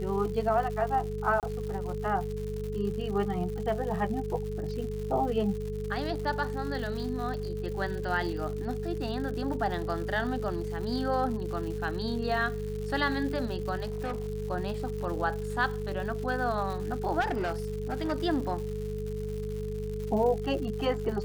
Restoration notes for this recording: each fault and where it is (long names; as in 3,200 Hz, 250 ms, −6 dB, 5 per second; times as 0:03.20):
surface crackle 200 per second −37 dBFS
mains hum 50 Hz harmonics 4 −36 dBFS
whistle 430 Hz −35 dBFS
0:01.40–0:01.43: drop-out 28 ms
0:13.82–0:14.28: clipping −28.5 dBFS
0:17.20–0:18.13: clipping −26 dBFS